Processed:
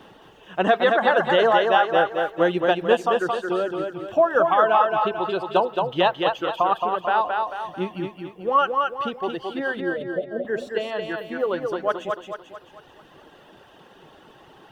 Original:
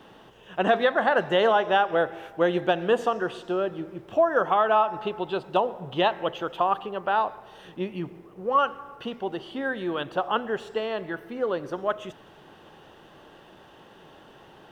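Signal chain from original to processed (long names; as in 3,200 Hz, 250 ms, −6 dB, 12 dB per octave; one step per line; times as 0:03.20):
reverb reduction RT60 1.8 s
0:09.80–0:10.45: Chebyshev low-pass filter 660 Hz, order 8
feedback echo with a high-pass in the loop 221 ms, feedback 47%, high-pass 200 Hz, level −3.5 dB
level +3 dB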